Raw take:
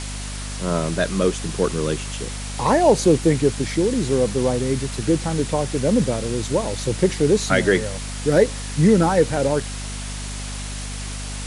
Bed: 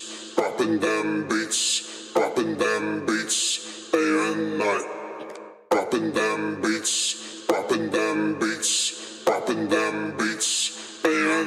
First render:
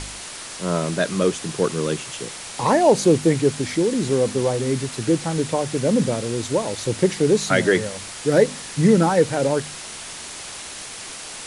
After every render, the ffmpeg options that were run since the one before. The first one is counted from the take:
-af "bandreject=f=50:t=h:w=4,bandreject=f=100:t=h:w=4,bandreject=f=150:t=h:w=4,bandreject=f=200:t=h:w=4,bandreject=f=250:t=h:w=4"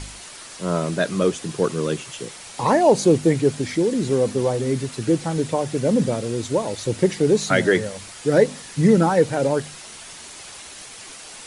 -af "afftdn=nr=6:nf=-35"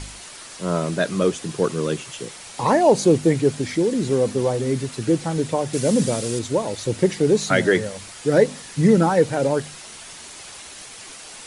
-filter_complex "[0:a]asettb=1/sr,asplit=3[s0][s1][s2];[s0]atrim=end=5.734[s3];[s1]atrim=start=5.73:end=6.39,asetpts=PTS-STARTPTS,afade=t=in:d=0.004:c=qsin,afade=t=out:st=0.656:d=0.004:c=qsin,highshelf=f=3900:g=11[s4];[s2]atrim=start=6.386[s5];[s3][s4]acrossfade=d=0.004:c1=hsin:c2=qsin[s6];[s6][s5]acrossfade=d=0.004:c1=qsin:c2=hsin"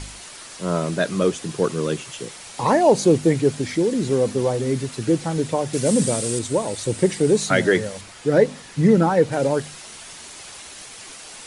-filter_complex "[0:a]asettb=1/sr,asplit=3[s0][s1][s2];[s0]atrim=end=5.864[s3];[s1]atrim=start=5.86:end=7.47,asetpts=PTS-STARTPTS,afade=t=in:d=0.004:c=qsin,afade=t=out:st=1.606:d=0.004:c=qsin,equalizer=f=8500:t=o:w=0.24:g=10[s4];[s2]atrim=start=7.466[s5];[s3][s4]acrossfade=d=0.004:c1=hsin:c2=qsin[s6];[s6][s5]acrossfade=d=0.004:c1=qsin:c2=hsin,asettb=1/sr,asplit=3[s7][s8][s9];[s7]atrim=end=8.014[s10];[s8]atrim=start=8.01:end=9.32,asetpts=PTS-STARTPTS,afade=t=in:d=0.004:c=qsin,afade=t=out:st=1.306:d=0.004:c=qsin,highshelf=f=4900:g=-7.5[s11];[s9]atrim=start=9.316[s12];[s10][s11]acrossfade=d=0.004:c1=hsin:c2=qsin[s13];[s13][s12]acrossfade=d=0.004:c1=qsin:c2=hsin"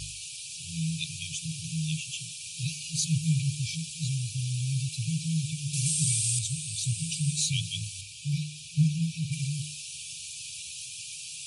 -af "afftfilt=real='re*(1-between(b*sr/4096,170,2300))':imag='im*(1-between(b*sr/4096,170,2300))':win_size=4096:overlap=0.75,highpass=84"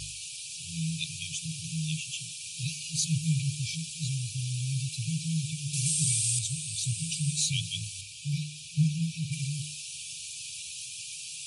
-af "lowshelf=f=140:g=-3.5"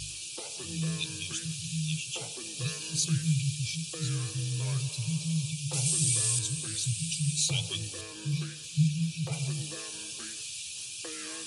-filter_complex "[1:a]volume=0.0631[s0];[0:a][s0]amix=inputs=2:normalize=0"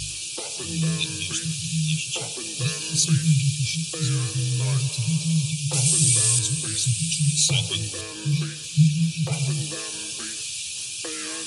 -af "volume=2.51"

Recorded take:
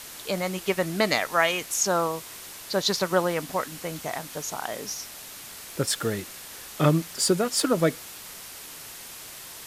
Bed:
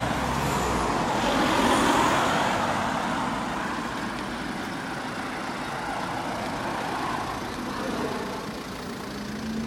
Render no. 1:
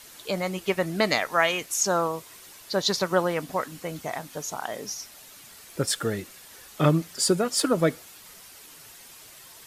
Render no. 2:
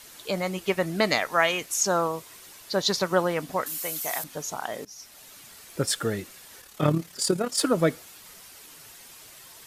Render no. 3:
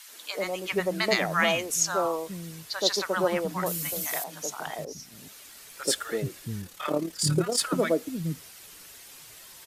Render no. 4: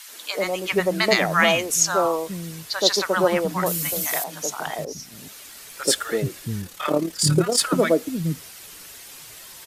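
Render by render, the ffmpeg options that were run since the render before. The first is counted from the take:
-af "afftdn=nr=8:nf=-42"
-filter_complex "[0:a]asettb=1/sr,asplit=3[s0][s1][s2];[s0]atrim=end=3.664[s3];[s1]atrim=start=3.66:end=4.24,asetpts=PTS-STARTPTS,afade=t=in:d=0.004:c=qsin,afade=t=out:st=0.576:d=0.004:c=qsin,aemphasis=mode=production:type=riaa[s4];[s2]atrim=start=4.236[s5];[s3][s4]acrossfade=d=0.004:c1=hsin:c2=qsin[s6];[s6][s5]acrossfade=d=0.004:c1=qsin:c2=hsin,asettb=1/sr,asplit=3[s7][s8][s9];[s7]atrim=end=6.614[s10];[s8]atrim=start=6.61:end=7.58,asetpts=PTS-STARTPTS,afade=t=in:d=0.004:c=qsin,afade=t=out:st=0.966:d=0.004:c=qsin,tremolo=f=36:d=0.571[s11];[s9]atrim=start=7.576[s12];[s10][s11]acrossfade=d=0.004:c1=hsin:c2=qsin[s13];[s13][s12]acrossfade=d=0.004:c1=qsin:c2=hsin,asplit=2[s14][s15];[s14]atrim=end=4.85,asetpts=PTS-STARTPTS,afade=t=out:st=4.846:d=0.004:c=hsin:silence=0.0891251[s16];[s15]atrim=start=4.85,asetpts=PTS-STARTPTS,afade=t=in:d=0.52:c=qsin:silence=0.0891251[s17];[s16][s17]concat=n=2:v=0:a=1"
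-filter_complex "[0:a]acrossover=split=240|910[s0][s1][s2];[s1]adelay=80[s3];[s0]adelay=430[s4];[s4][s3][s2]amix=inputs=3:normalize=0"
-af "volume=2,alimiter=limit=0.708:level=0:latency=1"

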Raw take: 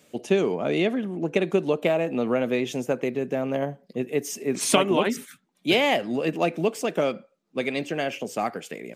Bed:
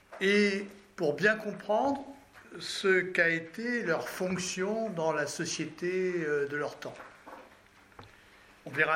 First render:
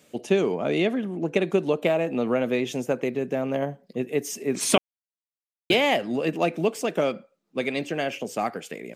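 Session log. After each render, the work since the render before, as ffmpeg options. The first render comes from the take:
-filter_complex "[0:a]asplit=3[s0][s1][s2];[s0]atrim=end=4.78,asetpts=PTS-STARTPTS,afade=t=out:st=4.776:d=0.004:c=hsin[s3];[s1]atrim=start=4.78:end=5.7,asetpts=PTS-STARTPTS,volume=0[s4];[s2]atrim=start=5.7,asetpts=PTS-STARTPTS,afade=t=in:d=0.004:c=hsin[s5];[s3][s4][s5]concat=n=3:v=0:a=1"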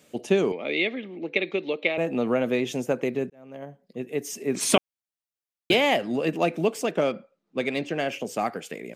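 -filter_complex "[0:a]asettb=1/sr,asplit=3[s0][s1][s2];[s0]atrim=end=0.524[s3];[s1]atrim=start=0.52:end=1.98,asetpts=PTS-STARTPTS,afade=t=in:d=0.004:c=qsin,afade=t=out:st=1.456:d=0.004:c=qsin,highpass=360,equalizer=f=410:t=q:w=4:g=-3,equalizer=f=690:t=q:w=4:g=-9,equalizer=f=1000:t=q:w=4:g=-9,equalizer=f=1500:t=q:w=4:g=-10,equalizer=f=2200:t=q:w=4:g=10,equalizer=f=3900:t=q:w=4:g=7,lowpass=f=4300:w=0.5412,lowpass=f=4300:w=1.3066[s4];[s2]atrim=start=1.976[s5];[s3][s4]acrossfade=d=0.004:c1=hsin:c2=qsin[s6];[s6][s5]acrossfade=d=0.004:c1=qsin:c2=hsin,asettb=1/sr,asplit=3[s7][s8][s9];[s7]atrim=end=6.914[s10];[s8]atrim=start=6.91:end=8.07,asetpts=PTS-STARTPTS,afade=t=in:d=0.004:c=qsin,afade=t=out:st=1.156:d=0.004:c=qsin,adynamicsmooth=sensitivity=6:basefreq=5900[s11];[s9]atrim=start=8.066[s12];[s10][s11]acrossfade=d=0.004:c1=hsin:c2=qsin[s13];[s13][s12]acrossfade=d=0.004:c1=qsin:c2=hsin,asplit=2[s14][s15];[s14]atrim=end=3.3,asetpts=PTS-STARTPTS,afade=t=out:st=3.296:d=0.004:c=hsin[s16];[s15]atrim=start=3.3,asetpts=PTS-STARTPTS,afade=t=in:d=1.27[s17];[s16][s17]concat=n=2:v=0:a=1"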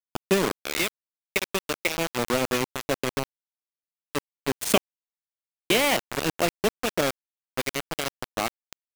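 -af "aeval=exprs='sgn(val(0))*max(abs(val(0))-0.0224,0)':c=same,acrusher=bits=3:mix=0:aa=0.000001"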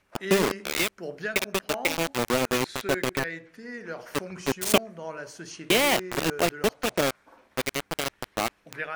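-filter_complex "[1:a]volume=0.447[s0];[0:a][s0]amix=inputs=2:normalize=0"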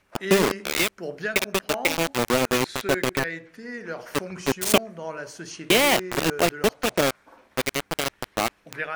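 -af "volume=1.41,alimiter=limit=0.708:level=0:latency=1"

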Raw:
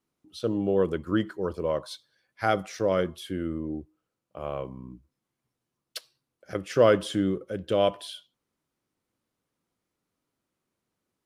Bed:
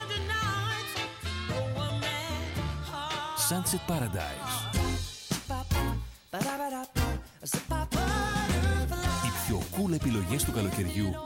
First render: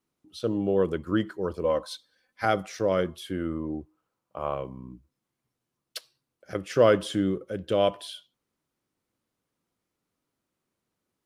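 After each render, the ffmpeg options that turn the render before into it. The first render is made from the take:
-filter_complex "[0:a]asettb=1/sr,asplit=3[s0][s1][s2];[s0]atrim=end=1.644[s3];[s1]atrim=start=1.64:end=2.45,asetpts=PTS-STARTPTS,afade=t=in:d=0.004:c=qsin,afade=t=out:st=0.806:d=0.004:c=qsin,aecho=1:1:3.9:0.65,atrim=end_sample=35721[s4];[s2]atrim=start=2.446[s5];[s3][s4]acrossfade=d=0.004:c1=hsin:c2=qsin[s6];[s6][s5]acrossfade=d=0.004:c1=qsin:c2=hsin,asettb=1/sr,asplit=3[s7][s8][s9];[s7]atrim=end=3.304[s10];[s8]atrim=start=3.3:end=4.55,asetpts=PTS-STARTPTS,afade=t=in:d=0.004:c=qsin,afade=t=out:st=1.246:d=0.004:c=qsin,equalizer=f=1000:w=1.4:g=8.5[s11];[s9]atrim=start=4.546[s12];[s10][s11]acrossfade=d=0.004:c1=hsin:c2=qsin[s13];[s13][s12]acrossfade=d=0.004:c1=qsin:c2=hsin"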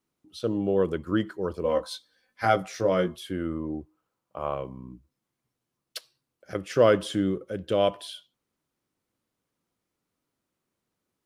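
-filter_complex "[0:a]asettb=1/sr,asplit=3[s0][s1][s2];[s0]atrim=end=1.644[s3];[s1]atrim=start=1.64:end=3.16,asetpts=PTS-STARTPTS,afade=t=in:d=0.004:c=qsin,afade=t=out:st=1.516:d=0.004:c=qsin,asplit=2[s4][s5];[s5]adelay=17,volume=0.596[s6];[s4][s6]amix=inputs=2:normalize=0,atrim=end_sample=67032[s7];[s2]atrim=start=3.156[s8];[s3][s7]acrossfade=d=0.004:c1=hsin:c2=qsin[s9];[s9][s8]acrossfade=d=0.004:c1=qsin:c2=hsin"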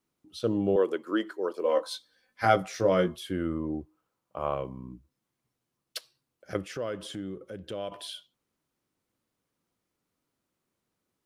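-filter_complex "[0:a]asettb=1/sr,asplit=3[s0][s1][s2];[s0]atrim=end=0.764[s3];[s1]atrim=start=0.76:end=1.87,asetpts=PTS-STARTPTS,afade=t=in:d=0.004:c=qsin,afade=t=out:st=1.106:d=0.004:c=qsin,highpass=f=300:w=0.5412,highpass=f=300:w=1.3066[s4];[s2]atrim=start=1.866[s5];[s3][s4]acrossfade=d=0.004:c1=hsin:c2=qsin[s6];[s6][s5]acrossfade=d=0.004:c1=qsin:c2=hsin,asettb=1/sr,asplit=3[s7][s8][s9];[s7]atrim=end=6.654[s10];[s8]atrim=start=6.65:end=7.92,asetpts=PTS-STARTPTS,afade=t=in:d=0.004:c=qsin,afade=t=out:st=1.266:d=0.004:c=qsin,acompressor=threshold=0.00794:ratio=2:attack=3.2:release=140:knee=1:detection=peak[s11];[s9]atrim=start=7.916[s12];[s10][s11]acrossfade=d=0.004:c1=hsin:c2=qsin[s13];[s13][s12]acrossfade=d=0.004:c1=qsin:c2=hsin"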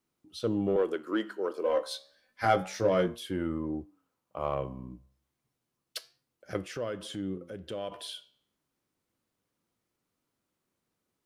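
-filter_complex "[0:a]asplit=2[s0][s1];[s1]asoftclip=type=tanh:threshold=0.0596,volume=0.562[s2];[s0][s2]amix=inputs=2:normalize=0,flanger=delay=8.3:depth=7.1:regen=85:speed=0.3:shape=sinusoidal"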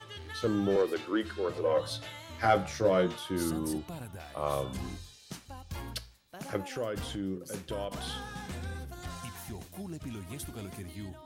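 -filter_complex "[1:a]volume=0.251[s0];[0:a][s0]amix=inputs=2:normalize=0"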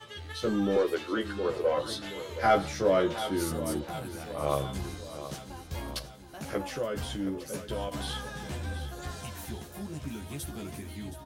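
-filter_complex "[0:a]asplit=2[s0][s1];[s1]adelay=14,volume=0.75[s2];[s0][s2]amix=inputs=2:normalize=0,asplit=2[s3][s4];[s4]aecho=0:1:721|1442|2163|2884|3605|4326:0.237|0.135|0.077|0.0439|0.025|0.0143[s5];[s3][s5]amix=inputs=2:normalize=0"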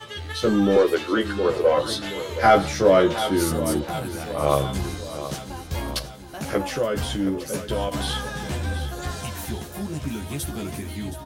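-af "volume=2.66,alimiter=limit=0.708:level=0:latency=1"

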